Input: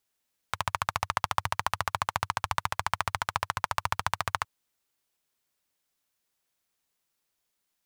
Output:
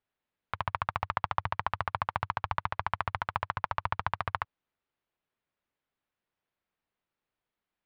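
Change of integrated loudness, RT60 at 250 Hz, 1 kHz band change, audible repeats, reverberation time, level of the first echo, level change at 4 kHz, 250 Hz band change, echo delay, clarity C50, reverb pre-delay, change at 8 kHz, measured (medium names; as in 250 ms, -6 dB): -2.5 dB, no reverb, -2.0 dB, no echo, no reverb, no echo, -9.5 dB, -0.5 dB, no echo, no reverb, no reverb, under -25 dB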